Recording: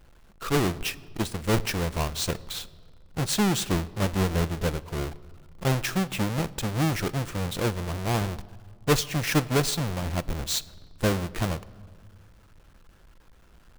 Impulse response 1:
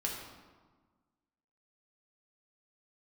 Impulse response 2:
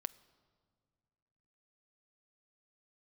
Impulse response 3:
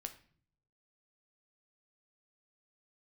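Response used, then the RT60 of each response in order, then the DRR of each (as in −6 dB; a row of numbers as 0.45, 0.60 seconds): 2; 1.4, 2.0, 0.50 seconds; −2.5, 15.5, 6.0 decibels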